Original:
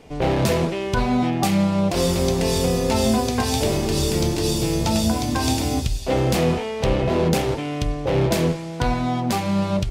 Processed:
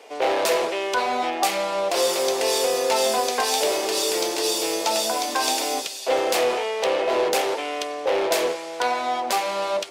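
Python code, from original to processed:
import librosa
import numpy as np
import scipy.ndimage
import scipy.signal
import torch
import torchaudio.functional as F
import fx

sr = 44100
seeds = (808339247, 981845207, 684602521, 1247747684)

p1 = scipy.signal.sosfilt(scipy.signal.butter(4, 440.0, 'highpass', fs=sr, output='sos'), x)
p2 = 10.0 ** (-25.0 / 20.0) * np.tanh(p1 / 10.0 ** (-25.0 / 20.0))
y = p1 + F.gain(torch.from_numpy(p2), -4.0).numpy()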